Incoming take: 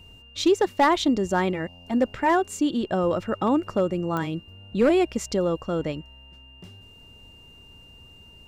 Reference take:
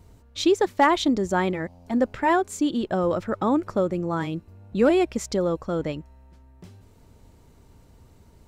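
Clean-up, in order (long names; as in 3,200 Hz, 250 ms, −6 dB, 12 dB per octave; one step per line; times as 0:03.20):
clipped peaks rebuilt −12.5 dBFS
click removal
notch filter 2,800 Hz, Q 30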